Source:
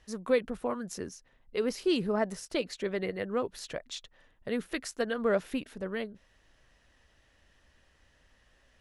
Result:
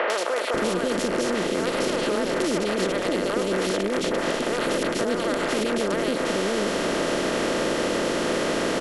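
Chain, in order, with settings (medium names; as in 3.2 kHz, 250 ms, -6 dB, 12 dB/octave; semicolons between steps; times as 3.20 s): spectral levelling over time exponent 0.2; Chebyshev shaper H 2 -31 dB, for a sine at -6 dBFS; peak limiter -17 dBFS, peak gain reduction 11 dB; three bands offset in time mids, highs, lows 100/540 ms, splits 520/2200 Hz; three bands compressed up and down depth 100%; trim +4 dB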